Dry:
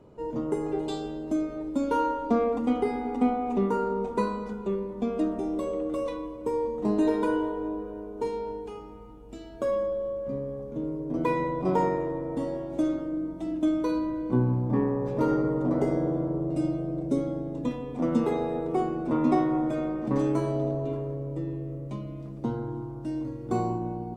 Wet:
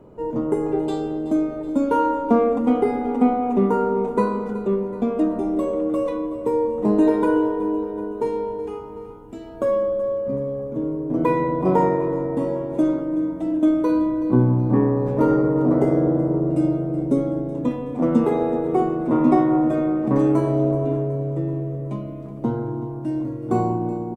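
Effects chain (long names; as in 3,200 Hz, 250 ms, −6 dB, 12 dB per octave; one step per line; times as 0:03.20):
parametric band 4,800 Hz −9.5 dB 1.9 octaves
mains-hum notches 50/100/150 Hz
on a send: repeating echo 375 ms, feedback 57%, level −15.5 dB
on the sum: level +7 dB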